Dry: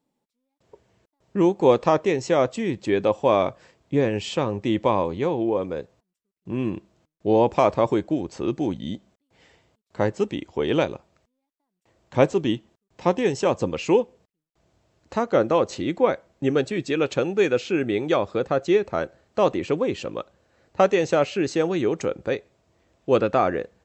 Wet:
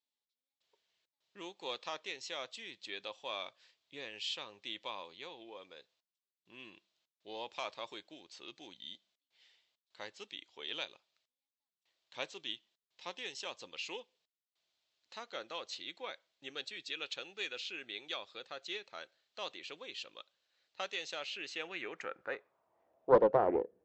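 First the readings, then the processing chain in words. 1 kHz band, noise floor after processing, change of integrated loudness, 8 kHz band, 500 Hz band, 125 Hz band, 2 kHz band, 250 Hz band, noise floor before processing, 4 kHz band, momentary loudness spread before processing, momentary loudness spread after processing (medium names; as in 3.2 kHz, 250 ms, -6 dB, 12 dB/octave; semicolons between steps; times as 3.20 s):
-16.0 dB, under -85 dBFS, -16.5 dB, -12.5 dB, -17.5 dB, -27.0 dB, -11.5 dB, -25.0 dB, -82 dBFS, -4.5 dB, 11 LU, 12 LU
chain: band-pass sweep 3.8 kHz -> 390 Hz, 21.26–23.53 s; loudspeaker Doppler distortion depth 0.34 ms; trim -2 dB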